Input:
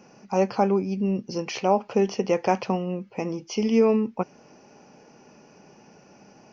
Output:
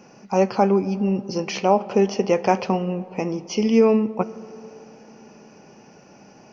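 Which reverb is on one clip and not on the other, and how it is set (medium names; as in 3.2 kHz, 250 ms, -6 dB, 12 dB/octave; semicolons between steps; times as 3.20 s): algorithmic reverb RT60 3.2 s, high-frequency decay 0.3×, pre-delay 0 ms, DRR 17 dB; trim +3.5 dB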